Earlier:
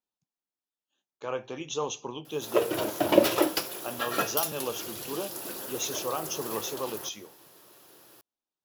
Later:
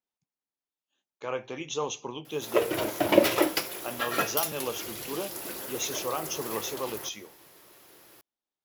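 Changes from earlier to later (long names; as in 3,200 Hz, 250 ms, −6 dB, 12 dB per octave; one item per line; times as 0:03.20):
background: remove high-pass filter 79 Hz
master: add parametric band 2,100 Hz +7.5 dB 0.36 octaves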